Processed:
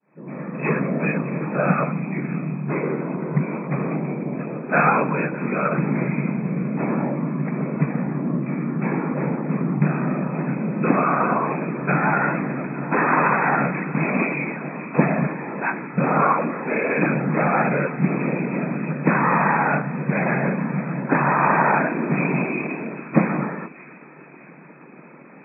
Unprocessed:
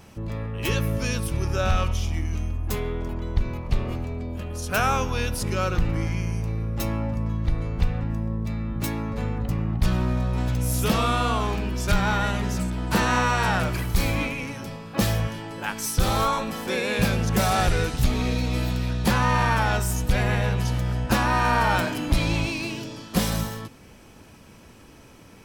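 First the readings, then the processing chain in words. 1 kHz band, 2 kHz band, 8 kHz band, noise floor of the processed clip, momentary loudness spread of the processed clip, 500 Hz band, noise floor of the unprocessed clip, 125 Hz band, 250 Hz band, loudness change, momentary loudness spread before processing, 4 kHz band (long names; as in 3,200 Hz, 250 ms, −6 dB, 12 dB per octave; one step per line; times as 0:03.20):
+4.5 dB, +4.5 dB, below −40 dB, −44 dBFS, 8 LU, +5.0 dB, −48 dBFS, −0.5 dB, +6.5 dB, +3.0 dB, 8 LU, below −40 dB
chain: fade in at the beginning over 0.64 s
hum removal 185.8 Hz, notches 36
random phases in short frames
in parallel at +2 dB: speech leveller 2 s
on the sum: brick-wall band-pass 130–2,600 Hz
on a send: delay with a high-pass on its return 610 ms, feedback 49%, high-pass 2,000 Hz, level −13 dB
on the sum: level −2 dB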